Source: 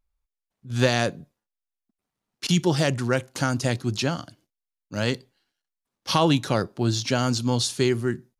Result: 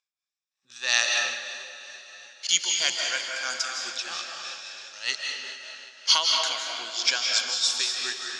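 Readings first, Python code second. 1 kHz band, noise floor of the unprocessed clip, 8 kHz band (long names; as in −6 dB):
−5.0 dB, below −85 dBFS, +6.5 dB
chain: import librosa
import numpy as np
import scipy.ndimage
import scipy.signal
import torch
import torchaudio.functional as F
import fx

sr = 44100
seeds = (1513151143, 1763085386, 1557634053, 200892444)

y = fx.spec_ripple(x, sr, per_octave=1.8, drift_hz=0.27, depth_db=9)
y = scipy.signal.sosfilt(scipy.signal.butter(2, 1300.0, 'highpass', fs=sr, output='sos'), y)
y = fx.high_shelf(y, sr, hz=2500.0, db=11.0)
y = fx.echo_diffused(y, sr, ms=457, feedback_pct=49, wet_db=-12.5)
y = y * (1.0 - 0.84 / 2.0 + 0.84 / 2.0 * np.cos(2.0 * np.pi * 3.1 * (np.arange(len(y)) / sr)))
y = scipy.signal.sosfilt(scipy.signal.cheby1(3, 1.0, 6500.0, 'lowpass', fs=sr, output='sos'), y)
y = fx.rev_freeverb(y, sr, rt60_s=1.3, hf_ratio=0.7, predelay_ms=120, drr_db=0.5)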